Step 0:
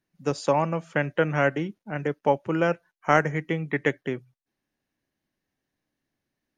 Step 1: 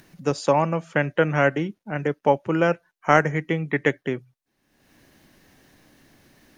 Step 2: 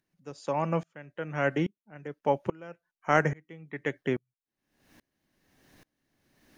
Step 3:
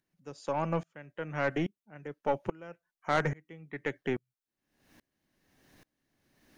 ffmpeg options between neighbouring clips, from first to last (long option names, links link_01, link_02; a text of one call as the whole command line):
ffmpeg -i in.wav -af "acompressor=mode=upward:threshold=-39dB:ratio=2.5,volume=3dB" out.wav
ffmpeg -i in.wav -af "aeval=exprs='val(0)*pow(10,-30*if(lt(mod(-1.2*n/s,1),2*abs(-1.2)/1000),1-mod(-1.2*n/s,1)/(2*abs(-1.2)/1000),(mod(-1.2*n/s,1)-2*abs(-1.2)/1000)/(1-2*abs(-1.2)/1000))/20)':channel_layout=same" out.wav
ffmpeg -i in.wav -af "aeval=exprs='(tanh(7.08*val(0)+0.35)-tanh(0.35))/7.08':channel_layout=same,volume=-1dB" out.wav